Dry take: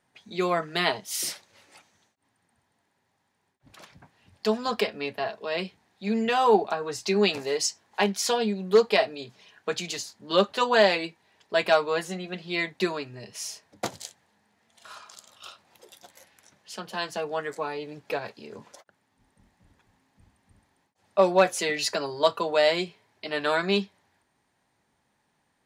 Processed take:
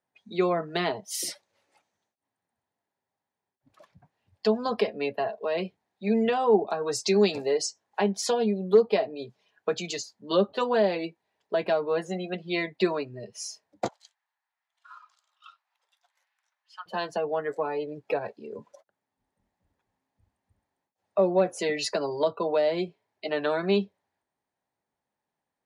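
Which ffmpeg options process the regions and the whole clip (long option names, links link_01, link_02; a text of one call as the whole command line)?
ffmpeg -i in.wav -filter_complex "[0:a]asettb=1/sr,asplit=3[link_01][link_02][link_03];[link_01]atrim=end=6.674[link_04];[link_02]atrim=start=6.67:end=7.42,asetpts=PTS-STARTPTS,afade=type=in:duration=0.004:curve=qsin,afade=type=out:start_time=0.746:duration=0.004:curve=qsin,highshelf=frequency=3400:gain=9.5,bandreject=frequency=2900:width=19[link_05];[link_03]atrim=start=7.416[link_06];[link_04][link_05]acrossfade=duration=0.004:curve1=hsin:curve2=qsin[link_07];[link_07][link_06]acrossfade=duration=0.004:curve1=qsin:curve2=hsin,asettb=1/sr,asplit=3[link_08][link_09][link_10];[link_08]atrim=end=13.884[link_11];[link_09]atrim=start=13.88:end=16.86,asetpts=PTS-STARTPTS,afade=type=in:duration=0.004:curve=qsin,afade=type=out:start_time=2.976:duration=0.004:curve=qsin,highpass=frequency=990:width=0.5412,highpass=frequency=990:width=1.3066,aemphasis=mode=reproduction:type=50fm[link_12];[link_10]atrim=start=16.856[link_13];[link_11][link_12]acrossfade=duration=0.004:curve1=hsin:curve2=qsin[link_14];[link_14][link_13]acrossfade=duration=0.004:curve1=qsin:curve2=hsin,afftdn=noise_reduction=17:noise_floor=-39,equalizer=frequency=600:width_type=o:width=1.7:gain=6.5,acrossover=split=400[link_15][link_16];[link_16]acompressor=threshold=-27dB:ratio=6[link_17];[link_15][link_17]amix=inputs=2:normalize=0" out.wav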